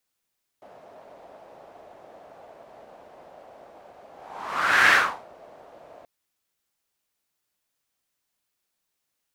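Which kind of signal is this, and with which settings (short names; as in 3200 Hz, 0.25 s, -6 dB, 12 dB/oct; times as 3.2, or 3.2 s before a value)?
whoosh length 5.43 s, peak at 4.3, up 0.87 s, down 0.37 s, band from 650 Hz, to 1700 Hz, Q 3.4, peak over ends 31.5 dB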